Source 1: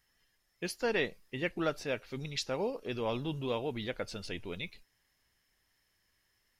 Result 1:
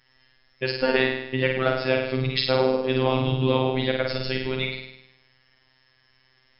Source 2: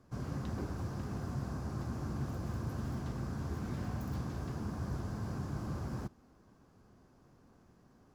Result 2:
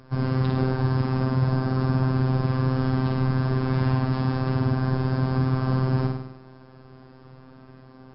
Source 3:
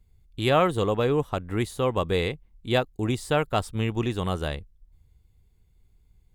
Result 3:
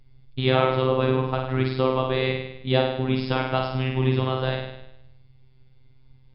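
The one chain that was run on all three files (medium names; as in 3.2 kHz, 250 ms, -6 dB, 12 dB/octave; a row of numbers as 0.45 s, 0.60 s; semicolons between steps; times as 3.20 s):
compression 2:1, threshold -32 dBFS; flutter echo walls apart 8.8 m, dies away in 0.82 s; robot voice 130 Hz; MP3 64 kbps 12 kHz; normalise loudness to -24 LUFS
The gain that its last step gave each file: +14.0 dB, +16.0 dB, +9.5 dB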